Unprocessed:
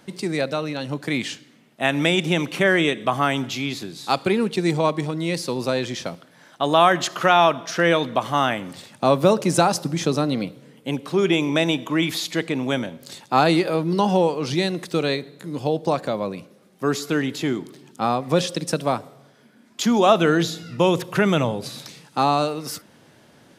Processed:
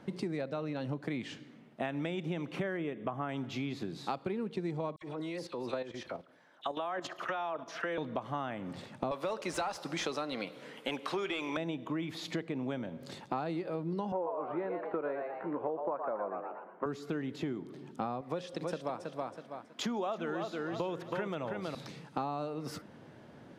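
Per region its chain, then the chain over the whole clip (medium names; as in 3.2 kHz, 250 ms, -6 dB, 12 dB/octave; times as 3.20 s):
2.77–3.29 s: Butterworth band-stop 4.3 kHz, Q 2.5 + treble shelf 3.4 kHz -10.5 dB
4.96–7.98 s: peaking EQ 150 Hz -12 dB 1.6 oct + phase dispersion lows, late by 59 ms, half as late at 2.2 kHz + level held to a coarse grid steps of 12 dB
9.11–11.57 s: tilt EQ +3.5 dB/octave + overdrive pedal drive 16 dB, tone 3.5 kHz, clips at -2.5 dBFS
14.12–16.86 s: cabinet simulation 320–2000 Hz, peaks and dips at 360 Hz +3 dB, 550 Hz +6 dB, 980 Hz +10 dB, 1.4 kHz +8 dB + frequency-shifting echo 117 ms, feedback 32%, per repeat +120 Hz, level -6 dB
18.21–21.75 s: bass shelf 250 Hz -12 dB + feedback delay 323 ms, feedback 24%, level -7 dB
whole clip: low-pass 1.2 kHz 6 dB/octave; compression 8:1, threshold -33 dBFS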